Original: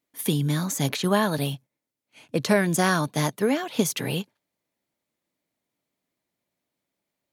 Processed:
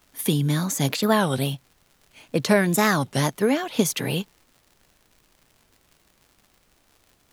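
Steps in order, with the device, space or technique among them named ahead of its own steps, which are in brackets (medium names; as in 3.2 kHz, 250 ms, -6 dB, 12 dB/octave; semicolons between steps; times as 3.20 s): warped LP (warped record 33 1/3 rpm, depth 250 cents; crackle 130 per s -45 dBFS; pink noise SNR 38 dB); trim +2 dB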